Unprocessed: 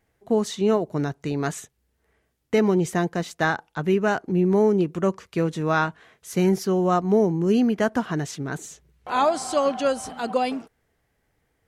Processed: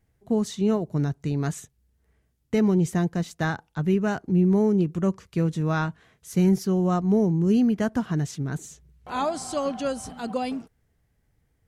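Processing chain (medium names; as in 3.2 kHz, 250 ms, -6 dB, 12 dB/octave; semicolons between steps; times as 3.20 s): tone controls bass +12 dB, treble +4 dB; trim -6.5 dB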